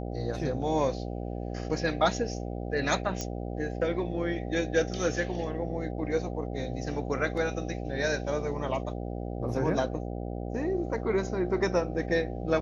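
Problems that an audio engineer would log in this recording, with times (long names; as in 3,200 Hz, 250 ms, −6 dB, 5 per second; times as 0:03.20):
mains buzz 60 Hz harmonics 13 −35 dBFS
0:03.21: click −18 dBFS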